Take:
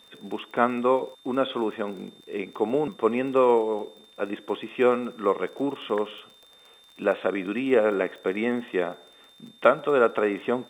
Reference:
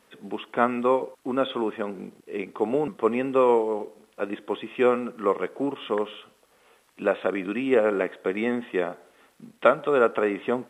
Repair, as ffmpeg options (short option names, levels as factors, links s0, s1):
-af "adeclick=t=4,bandreject=f=3600:w=30"